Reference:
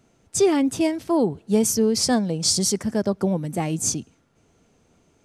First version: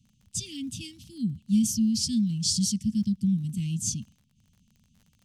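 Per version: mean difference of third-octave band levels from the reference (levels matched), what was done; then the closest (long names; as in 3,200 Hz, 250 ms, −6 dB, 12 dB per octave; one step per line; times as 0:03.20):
10.0 dB: Chebyshev band-stop filter 220–2,900 Hz, order 4
high-shelf EQ 4,700 Hz −9 dB
surface crackle 52 per second −48 dBFS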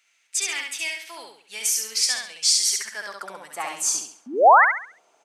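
14.0 dB: sound drawn into the spectrogram rise, 0:04.26–0:04.65, 220–2,200 Hz −18 dBFS
high-pass filter sweep 2,200 Hz → 740 Hz, 0:02.52–0:04.40
on a send: repeating echo 68 ms, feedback 35%, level −3.5 dB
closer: first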